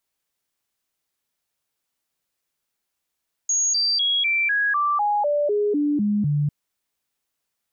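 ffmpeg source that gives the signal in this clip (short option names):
-f lavfi -i "aevalsrc='0.126*clip(min(mod(t,0.25),0.25-mod(t,0.25))/0.005,0,1)*sin(2*PI*6630*pow(2,-floor(t/0.25)/2)*mod(t,0.25))':d=3:s=44100"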